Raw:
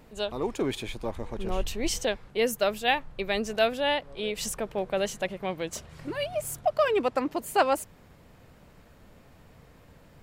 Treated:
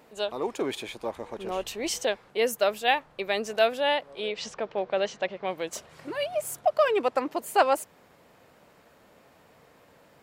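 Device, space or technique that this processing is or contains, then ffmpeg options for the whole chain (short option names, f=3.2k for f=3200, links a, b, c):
filter by subtraction: -filter_complex "[0:a]asplit=2[a][b];[b]lowpass=590,volume=-1[c];[a][c]amix=inputs=2:normalize=0,asettb=1/sr,asplit=3[d][e][f];[d]atrim=end=4.284[g];[e]atrim=start=4.28:end=5.47,asetpts=PTS-STARTPTS,afade=t=in:d=0.004:c=qsin,afade=t=out:st=1.186:d=0.004:c=qsin,lowpass=f=5.4k:w=0.5412,lowpass=f=5.4k:w=1.3066[h];[f]atrim=start=5.466[i];[g][h]acrossfade=d=0.004:c1=hsin:c2=qsin[j];[j][i]acrossfade=d=0.004:c1=qsin:c2=hsin"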